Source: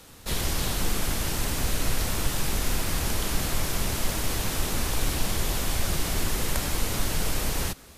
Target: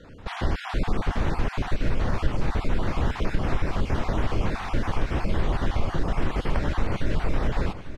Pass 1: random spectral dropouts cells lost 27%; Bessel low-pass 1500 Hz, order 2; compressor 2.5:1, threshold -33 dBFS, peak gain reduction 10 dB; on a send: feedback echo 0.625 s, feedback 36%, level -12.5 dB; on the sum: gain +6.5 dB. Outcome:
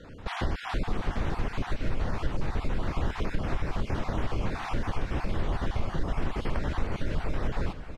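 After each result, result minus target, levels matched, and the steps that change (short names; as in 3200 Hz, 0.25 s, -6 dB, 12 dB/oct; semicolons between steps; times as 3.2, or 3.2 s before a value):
echo 0.222 s early; compressor: peak gain reduction +5 dB
change: feedback echo 0.847 s, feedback 36%, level -12.5 dB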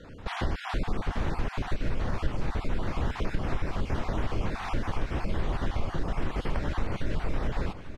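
compressor: peak gain reduction +5 dB
change: compressor 2.5:1, threshold -24.5 dBFS, peak gain reduction 5 dB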